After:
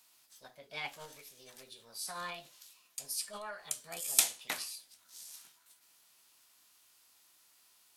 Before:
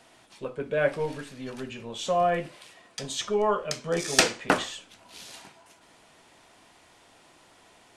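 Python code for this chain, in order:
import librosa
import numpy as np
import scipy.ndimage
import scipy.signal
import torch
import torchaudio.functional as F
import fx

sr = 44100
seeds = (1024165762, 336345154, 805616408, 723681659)

y = fx.formant_shift(x, sr, semitones=6)
y = librosa.effects.preemphasis(y, coef=0.9, zi=[0.0])
y = y * 10.0 ** (-3.5 / 20.0)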